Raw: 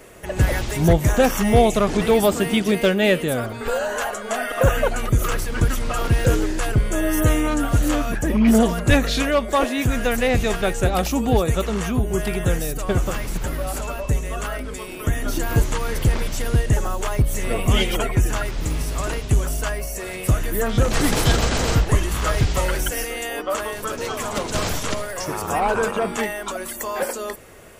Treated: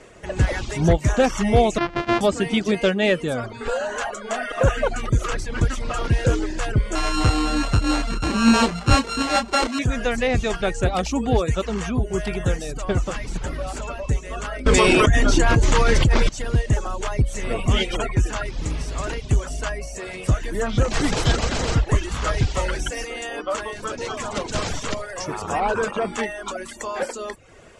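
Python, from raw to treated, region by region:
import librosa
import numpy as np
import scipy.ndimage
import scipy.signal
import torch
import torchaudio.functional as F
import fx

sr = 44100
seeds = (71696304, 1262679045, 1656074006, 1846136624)

y = fx.chain(x, sr, fx.sample_sort(block=128),
    fx.lowpass(hz=2900.0, slope=12),
    fx.low_shelf(hz=320.0, db=-6.5), at=(1.78, 2.21))
y = fx.chain(y, sr, fx.sample_sort(block=32),
    fx.doubler(ms=30.0, db=-5.5), at=(6.95, 9.79))
y = fx.chain(y, sr, fx.lowpass(hz=9200.0, slope=12),
    fx.env_flatten(amount_pct=100), at=(14.66, 16.29))
y = scipy.signal.sosfilt(scipy.signal.butter(4, 7900.0, 'lowpass', fs=sr, output='sos'), y)
y = fx.dereverb_blind(y, sr, rt60_s=0.51)
y = F.gain(torch.from_numpy(y), -1.0).numpy()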